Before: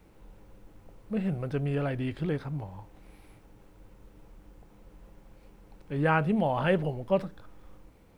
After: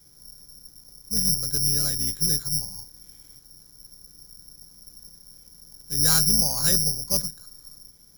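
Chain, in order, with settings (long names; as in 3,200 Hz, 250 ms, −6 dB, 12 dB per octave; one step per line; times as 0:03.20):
sub-octave generator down 2 octaves, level +2 dB
graphic EQ with 15 bands 160 Hz +8 dB, 630 Hz −3 dB, 1,600 Hz +6 dB
bad sample-rate conversion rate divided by 8×, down filtered, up zero stuff
level −9 dB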